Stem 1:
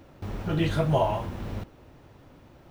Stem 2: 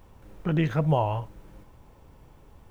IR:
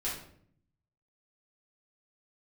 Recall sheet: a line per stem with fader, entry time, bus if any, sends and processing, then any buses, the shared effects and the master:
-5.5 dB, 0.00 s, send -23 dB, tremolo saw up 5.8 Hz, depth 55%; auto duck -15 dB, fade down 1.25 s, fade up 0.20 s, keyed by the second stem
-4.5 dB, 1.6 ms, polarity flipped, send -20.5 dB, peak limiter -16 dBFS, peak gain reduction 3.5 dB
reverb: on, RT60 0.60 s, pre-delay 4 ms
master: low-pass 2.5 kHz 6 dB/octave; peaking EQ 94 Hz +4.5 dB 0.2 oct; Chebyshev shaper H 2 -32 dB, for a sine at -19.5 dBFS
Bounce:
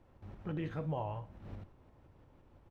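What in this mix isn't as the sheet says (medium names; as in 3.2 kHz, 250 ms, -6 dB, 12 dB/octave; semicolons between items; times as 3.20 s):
stem 1 -5.5 dB -> -12.0 dB; stem 2 -4.5 dB -> -12.5 dB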